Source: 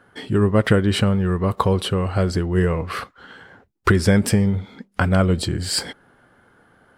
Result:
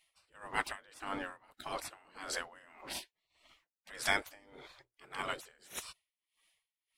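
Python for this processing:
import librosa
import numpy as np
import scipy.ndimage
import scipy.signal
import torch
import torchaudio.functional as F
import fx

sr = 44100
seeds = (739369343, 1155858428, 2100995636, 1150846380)

y = fx.hum_notches(x, sr, base_hz=60, count=4, at=(4.43, 5.22))
y = fx.spec_gate(y, sr, threshold_db=-20, keep='weak')
y = y * 10.0 ** (-26 * (0.5 - 0.5 * np.cos(2.0 * np.pi * 1.7 * np.arange(len(y)) / sr)) / 20.0)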